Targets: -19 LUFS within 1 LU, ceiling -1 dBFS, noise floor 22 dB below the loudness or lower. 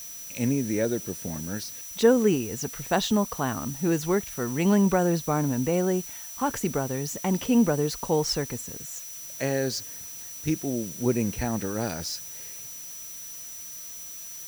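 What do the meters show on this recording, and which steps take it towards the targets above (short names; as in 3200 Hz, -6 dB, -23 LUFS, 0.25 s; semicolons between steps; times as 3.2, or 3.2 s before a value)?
steady tone 5900 Hz; tone level -40 dBFS; noise floor -40 dBFS; noise floor target -50 dBFS; loudness -27.5 LUFS; peak -6.5 dBFS; loudness target -19.0 LUFS
-> notch 5900 Hz, Q 30; denoiser 10 dB, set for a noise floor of -40 dBFS; gain +8.5 dB; limiter -1 dBFS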